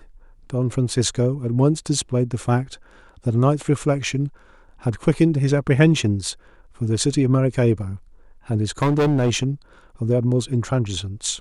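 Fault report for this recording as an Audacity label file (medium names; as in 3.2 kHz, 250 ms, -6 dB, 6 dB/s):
8.820000	9.460000	clipped -14.5 dBFS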